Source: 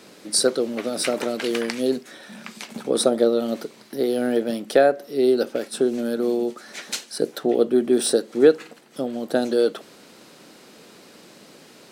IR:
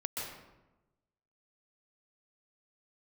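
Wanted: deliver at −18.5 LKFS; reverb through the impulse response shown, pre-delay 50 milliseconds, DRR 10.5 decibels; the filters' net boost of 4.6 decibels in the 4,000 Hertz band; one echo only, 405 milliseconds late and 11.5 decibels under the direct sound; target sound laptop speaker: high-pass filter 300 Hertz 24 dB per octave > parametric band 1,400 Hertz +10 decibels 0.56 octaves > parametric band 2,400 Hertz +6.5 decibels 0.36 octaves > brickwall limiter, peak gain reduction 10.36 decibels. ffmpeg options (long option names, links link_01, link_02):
-filter_complex "[0:a]equalizer=frequency=4000:width_type=o:gain=4.5,aecho=1:1:405:0.266,asplit=2[link_01][link_02];[1:a]atrim=start_sample=2205,adelay=50[link_03];[link_02][link_03]afir=irnorm=-1:irlink=0,volume=-13.5dB[link_04];[link_01][link_04]amix=inputs=2:normalize=0,highpass=frequency=300:width=0.5412,highpass=frequency=300:width=1.3066,equalizer=frequency=1400:width_type=o:width=0.56:gain=10,equalizer=frequency=2400:width_type=o:width=0.36:gain=6.5,volume=6dB,alimiter=limit=-7dB:level=0:latency=1"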